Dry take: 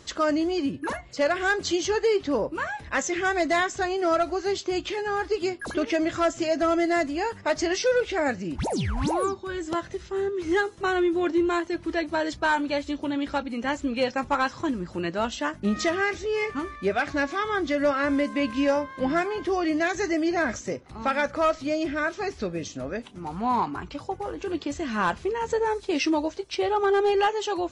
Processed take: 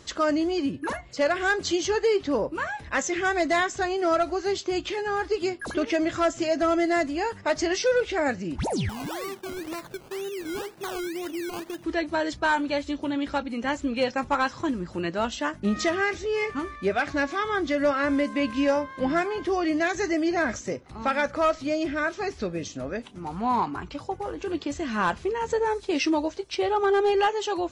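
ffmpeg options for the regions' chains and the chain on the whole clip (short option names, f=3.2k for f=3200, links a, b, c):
-filter_complex "[0:a]asettb=1/sr,asplit=3[a][b][c];[a]atrim=end=8.894[d];[b]atrim=start=8.89:end=11.84,asetpts=PTS-STARTPTS,afade=t=in:d=0.004:c=qsin,afade=t=out:st=2.946:d=0.004:c=qsin,highpass=f=130:w=0.5412,highpass=f=130:w=1.3066,acompressor=threshold=-31dB:ratio=4:attack=3.2:release=140:knee=1:detection=peak,acrusher=samples=19:mix=1:aa=0.000001:lfo=1:lforange=11.4:lforate=2[e];[c]atrim=start=11.836[f];[d][e]acrossfade=d=0.004:c1=hsin:c2=qsin[g];[g][f]acrossfade=d=0.004:c1=qsin:c2=hsin"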